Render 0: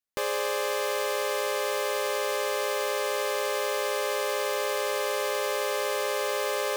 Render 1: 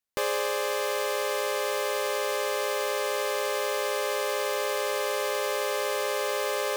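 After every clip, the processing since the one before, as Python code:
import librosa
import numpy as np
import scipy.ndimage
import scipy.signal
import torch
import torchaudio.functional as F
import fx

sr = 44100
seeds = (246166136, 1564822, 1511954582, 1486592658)

y = fx.rider(x, sr, range_db=10, speed_s=0.5)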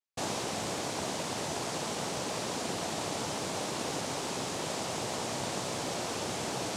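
y = fx.noise_vocoder(x, sr, seeds[0], bands=2)
y = y * librosa.db_to_amplitude(-6.5)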